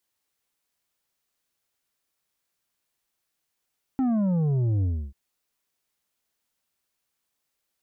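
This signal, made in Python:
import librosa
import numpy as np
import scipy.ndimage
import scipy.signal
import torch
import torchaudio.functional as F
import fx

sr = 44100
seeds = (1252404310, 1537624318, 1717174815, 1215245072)

y = fx.sub_drop(sr, level_db=-21.5, start_hz=270.0, length_s=1.14, drive_db=7, fade_s=0.3, end_hz=65.0)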